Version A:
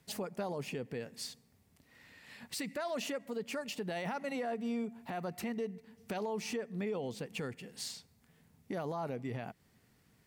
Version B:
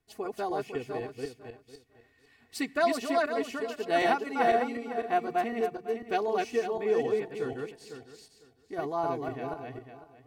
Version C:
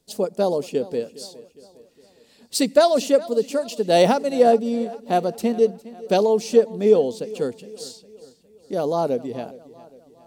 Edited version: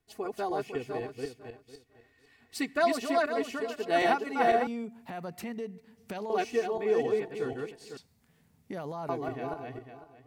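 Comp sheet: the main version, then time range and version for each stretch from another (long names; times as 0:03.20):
B
0:04.67–0:06.30: punch in from A
0:07.97–0:09.09: punch in from A
not used: C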